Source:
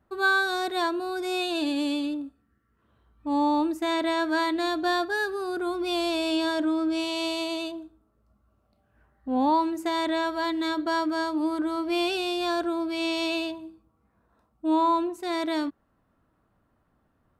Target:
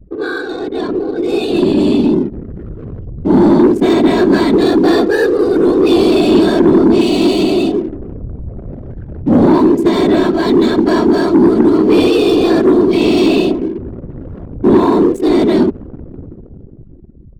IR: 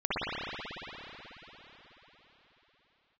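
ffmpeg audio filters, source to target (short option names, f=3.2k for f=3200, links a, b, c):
-af "aeval=exprs='val(0)+0.5*0.0119*sgn(val(0))':c=same,dynaudnorm=f=280:g=11:m=10dB,lowshelf=f=590:t=q:w=1.5:g=12.5,afftfilt=real='hypot(re,im)*cos(2*PI*random(0))':imag='hypot(re,im)*sin(2*PI*random(1))':win_size=512:overlap=0.75,equalizer=f=290:w=0.51:g=-5,acontrast=84,anlmdn=251,volume=-1dB"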